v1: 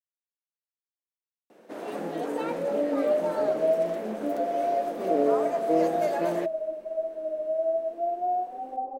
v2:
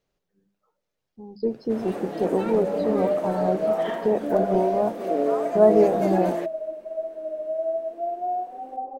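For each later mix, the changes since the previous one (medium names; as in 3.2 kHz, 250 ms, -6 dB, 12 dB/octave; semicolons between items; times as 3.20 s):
speech: unmuted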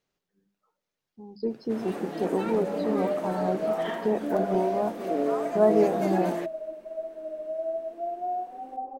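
speech: add bass shelf 110 Hz -11.5 dB; master: add peaking EQ 550 Hz -5.5 dB 1 oct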